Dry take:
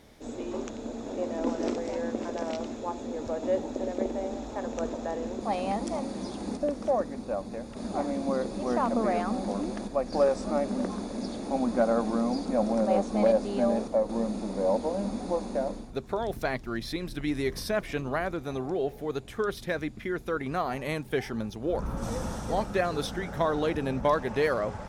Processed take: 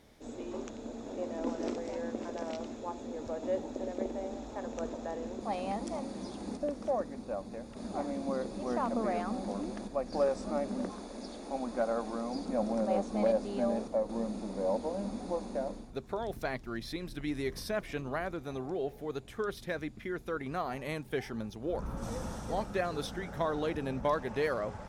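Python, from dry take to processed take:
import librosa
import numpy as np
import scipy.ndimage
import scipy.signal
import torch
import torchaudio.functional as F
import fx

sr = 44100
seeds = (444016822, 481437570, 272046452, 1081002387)

y = fx.peak_eq(x, sr, hz=130.0, db=-11.0, octaves=1.7, at=(10.89, 12.35))
y = F.gain(torch.from_numpy(y), -5.5).numpy()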